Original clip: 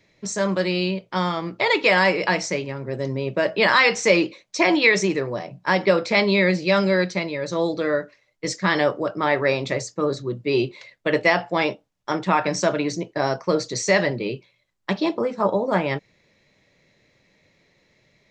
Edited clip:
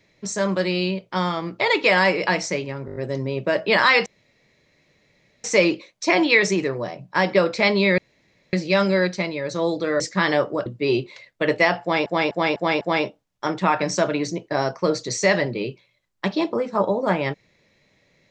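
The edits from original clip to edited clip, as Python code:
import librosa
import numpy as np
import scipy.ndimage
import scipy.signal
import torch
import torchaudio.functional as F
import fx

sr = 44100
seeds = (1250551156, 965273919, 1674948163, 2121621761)

y = fx.edit(x, sr, fx.stutter(start_s=2.86, slice_s=0.02, count=6),
    fx.insert_room_tone(at_s=3.96, length_s=1.38),
    fx.insert_room_tone(at_s=6.5, length_s=0.55),
    fx.cut(start_s=7.97, length_s=0.5),
    fx.cut(start_s=9.13, length_s=1.18),
    fx.repeat(start_s=11.46, length_s=0.25, count=5), tone=tone)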